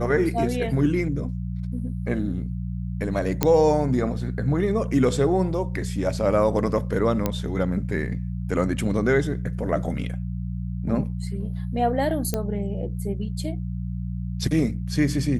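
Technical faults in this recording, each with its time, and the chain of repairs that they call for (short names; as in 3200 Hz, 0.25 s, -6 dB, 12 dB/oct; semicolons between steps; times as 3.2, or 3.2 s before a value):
hum 60 Hz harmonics 3 -29 dBFS
3.43 pop -4 dBFS
7.26 pop -9 dBFS
12.34 pop -10 dBFS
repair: de-click; de-hum 60 Hz, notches 3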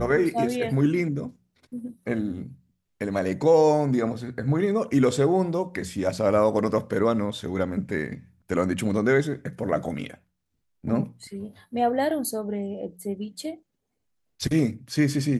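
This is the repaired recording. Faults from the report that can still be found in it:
none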